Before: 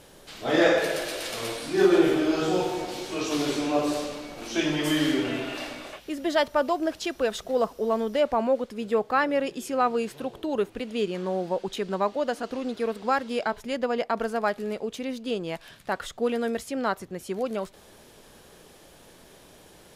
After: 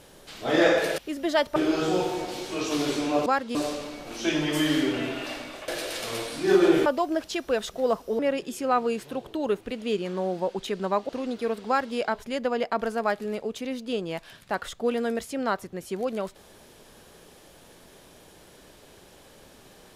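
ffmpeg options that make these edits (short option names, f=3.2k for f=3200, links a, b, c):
-filter_complex "[0:a]asplit=9[a][b][c][d][e][f][g][h][i];[a]atrim=end=0.982[j];[b]atrim=start=5.988:end=6.572[k];[c]atrim=start=2.158:end=3.862[l];[d]atrim=start=13.058:end=13.352[m];[e]atrim=start=3.858:end=5.992[n];[f]atrim=start=0.978:end=2.162[o];[g]atrim=start=6.568:end=7.902[p];[h]atrim=start=9.278:end=12.182[q];[i]atrim=start=12.468[r];[j][k]acrossfade=d=0.004:c1=hsin:c2=hsin[s];[s][l]acrossfade=d=0.004:c1=hsin:c2=hsin[t];[t][m]acrossfade=d=0.004:c1=hsin:c2=hsin[u];[u][n]acrossfade=d=0.004:c1=hsin:c2=hsin[v];[v][o]acrossfade=d=0.004:c1=hsin:c2=hsin[w];[w][p]acrossfade=d=0.004:c1=hsin:c2=hsin[x];[x][q]acrossfade=d=0.004:c1=hsin:c2=hsin[y];[y][r]acrossfade=d=0.004:c1=hsin:c2=hsin"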